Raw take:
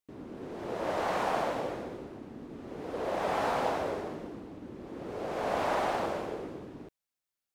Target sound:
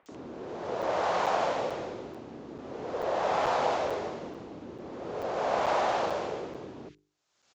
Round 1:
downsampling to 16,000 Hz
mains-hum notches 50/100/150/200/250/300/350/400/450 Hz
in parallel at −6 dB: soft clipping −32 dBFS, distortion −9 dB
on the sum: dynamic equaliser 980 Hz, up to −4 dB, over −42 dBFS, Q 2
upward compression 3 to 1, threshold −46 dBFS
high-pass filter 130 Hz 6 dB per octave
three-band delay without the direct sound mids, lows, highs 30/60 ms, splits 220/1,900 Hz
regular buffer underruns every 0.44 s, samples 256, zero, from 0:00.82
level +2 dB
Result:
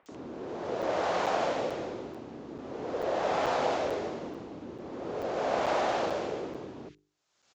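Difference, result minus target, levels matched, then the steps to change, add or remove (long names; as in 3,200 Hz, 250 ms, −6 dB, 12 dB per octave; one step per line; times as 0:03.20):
250 Hz band +3.5 dB
change: dynamic equaliser 290 Hz, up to −4 dB, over −42 dBFS, Q 2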